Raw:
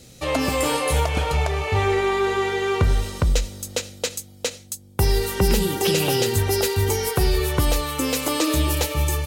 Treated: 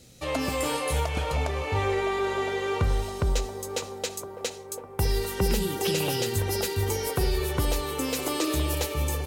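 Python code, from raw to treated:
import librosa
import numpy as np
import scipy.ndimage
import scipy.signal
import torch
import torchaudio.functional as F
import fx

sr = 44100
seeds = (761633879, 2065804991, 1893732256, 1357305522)

y = fx.echo_wet_bandpass(x, sr, ms=1014, feedback_pct=53, hz=570.0, wet_db=-7.5)
y = F.gain(torch.from_numpy(y), -6.0).numpy()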